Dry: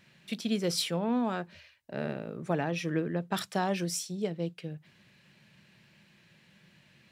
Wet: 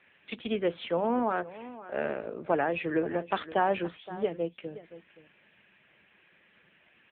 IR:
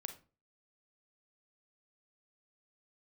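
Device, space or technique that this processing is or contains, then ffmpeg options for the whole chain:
satellite phone: -filter_complex "[0:a]asplit=3[link_01][link_02][link_03];[link_01]afade=type=out:start_time=0.73:duration=0.02[link_04];[link_02]aemphasis=mode=reproduction:type=75fm,afade=type=in:start_time=0.73:duration=0.02,afade=type=out:start_time=1.41:duration=0.02[link_05];[link_03]afade=type=in:start_time=1.41:duration=0.02[link_06];[link_04][link_05][link_06]amix=inputs=3:normalize=0,highpass=370,lowpass=3000,aecho=1:1:521:0.158,volume=6.5dB" -ar 8000 -c:a libopencore_amrnb -b:a 6700

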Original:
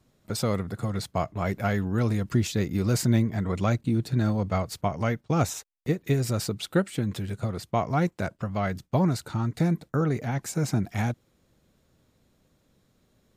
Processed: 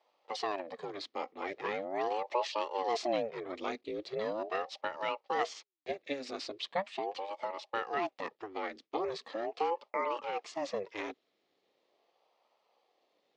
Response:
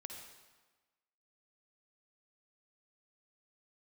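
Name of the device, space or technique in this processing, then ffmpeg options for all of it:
voice changer toy: -af "aeval=exprs='val(0)*sin(2*PI*440*n/s+440*0.7/0.4*sin(2*PI*0.4*n/s))':channel_layout=same,highpass=570,equalizer=frequency=640:width_type=q:width=4:gain=-3,equalizer=frequency=930:width_type=q:width=4:gain=-6,equalizer=frequency=1500:width_type=q:width=4:gain=-10,lowpass=frequency=4700:width=0.5412,lowpass=frequency=4700:width=1.3066"

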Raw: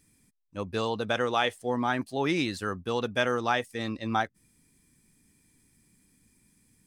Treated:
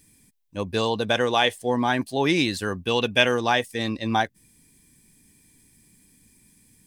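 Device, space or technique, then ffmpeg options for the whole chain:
presence and air boost: -filter_complex "[0:a]equalizer=frequency=3400:width_type=o:width=0.77:gain=2.5,highshelf=frequency=9800:gain=6.5,bandreject=frequency=1300:width=5.3,asettb=1/sr,asplit=3[link_01][link_02][link_03];[link_01]atrim=end=2.834[link_04];[link_02]atrim=start=2.83:end=3.34,asetpts=PTS-STARTPTS,afade=type=in:duration=0.004:curve=qsin,afade=type=out:start_time=0.506:duration=0.004:curve=qsin,equalizer=frequency=2700:width_type=o:width=0.54:gain=8.5[link_05];[link_03]atrim=start=3.336[link_06];[link_04][link_05]acrossfade=duration=0.004:curve1=hsin:curve2=qsin[link_07];[link_07][link_06]acrossfade=duration=0.004:curve1=qsin:curve2=hsin,volume=5.5dB"

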